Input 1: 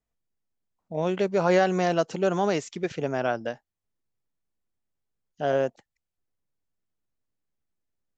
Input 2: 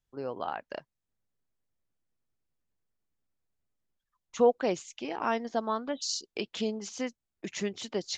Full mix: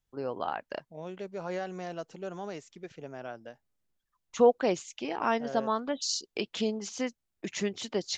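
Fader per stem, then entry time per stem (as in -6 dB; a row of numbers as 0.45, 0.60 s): -14.5, +1.5 dB; 0.00, 0.00 s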